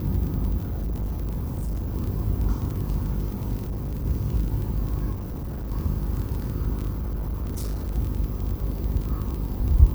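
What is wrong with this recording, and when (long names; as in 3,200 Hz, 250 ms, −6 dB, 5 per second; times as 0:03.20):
mains buzz 50 Hz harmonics 11 −30 dBFS
surface crackle 25 per second −29 dBFS
0:00.60–0:01.96: clipping −24.5 dBFS
0:03.62–0:04.06: clipping −26 dBFS
0:05.13–0:05.72: clipping −28.5 dBFS
0:06.90–0:07.92: clipping −25 dBFS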